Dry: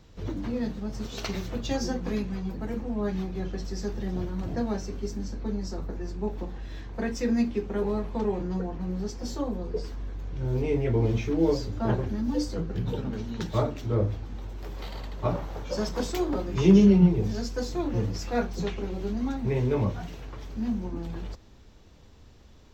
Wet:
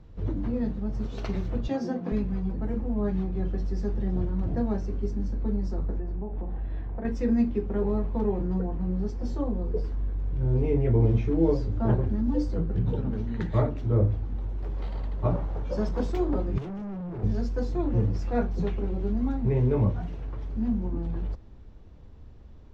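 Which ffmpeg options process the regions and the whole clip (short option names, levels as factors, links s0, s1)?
-filter_complex "[0:a]asettb=1/sr,asplit=3[s0][s1][s2];[s0]atrim=end=1.684[s3];[s1]atrim=start=1.68:end=2.12,asetpts=PTS-STARTPTS,afade=t=in:d=0.004:c=qsin,afade=t=out:st=0.436:d=0.004:c=qsin,highpass=f=150:w=0.5412,highpass=f=150:w=1.3066,equalizer=f=6800:t=o:w=0.4:g=-3.5,aeval=exprs='val(0)+0.00398*sin(2*PI*690*n/s)':c=same[s4];[s2]atrim=start=2.116[s5];[s3][s4]acrossfade=d=0.004:c1=hsin:c2=qsin[s6];[s6][s5]acrossfade=d=0.004:c1=qsin:c2=hsin,asettb=1/sr,asplit=3[s7][s8][s9];[s7]atrim=end=6.004[s10];[s8]atrim=start=6:end=7.05,asetpts=PTS-STARTPTS,afade=t=in:d=0.004:c=qsin,afade=t=out:st=1.046:d=0.004:c=qsin,lowpass=2900,equalizer=f=720:w=3.2:g=5.5,acompressor=threshold=0.0251:ratio=6:attack=3.2:release=140:knee=1:detection=peak[s11];[s9]atrim=start=7.046[s12];[s10][s11]acrossfade=d=0.004:c1=hsin:c2=qsin[s13];[s13][s12]acrossfade=d=0.004:c1=qsin:c2=hsin,asettb=1/sr,asplit=3[s14][s15][s16];[s14]atrim=end=13.274[s17];[s15]atrim=start=13.27:end=13.69,asetpts=PTS-STARTPTS,afade=t=in:d=0.004:c=qsin,afade=t=out:st=0.416:d=0.004:c=qsin,equalizer=f=1900:t=o:w=0.4:g=11.5,bandreject=f=5500:w=7.9[s18];[s16]atrim=start=13.686[s19];[s17][s18]acrossfade=d=0.004:c1=hsin:c2=qsin[s20];[s20][s19]acrossfade=d=0.004:c1=qsin:c2=hsin,asettb=1/sr,asplit=3[s21][s22][s23];[s21]atrim=end=16.584[s24];[s22]atrim=start=16.58:end=17.23,asetpts=PTS-STARTPTS,afade=t=in:d=0.004:c=qsin,afade=t=out:st=0.646:d=0.004:c=qsin,highpass=96,acompressor=threshold=0.0631:ratio=16:attack=3.2:release=140:knee=1:detection=peak,asoftclip=type=hard:threshold=0.0168[s25];[s23]atrim=start=17.226[s26];[s24][s25]acrossfade=d=0.004:c1=hsin:c2=qsin[s27];[s27][s26]acrossfade=d=0.004:c1=qsin:c2=hsin,lowpass=f=1100:p=1,lowshelf=f=120:g=7.5"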